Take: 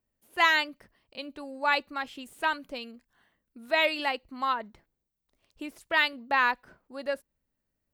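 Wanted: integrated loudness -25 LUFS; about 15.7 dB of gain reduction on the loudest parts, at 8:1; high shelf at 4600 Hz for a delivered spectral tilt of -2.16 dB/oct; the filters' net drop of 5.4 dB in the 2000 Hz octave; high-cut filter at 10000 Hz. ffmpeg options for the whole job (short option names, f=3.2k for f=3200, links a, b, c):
-af "lowpass=10k,equalizer=f=2k:t=o:g=-8,highshelf=f=4.6k:g=7.5,acompressor=threshold=-38dB:ratio=8,volume=18.5dB"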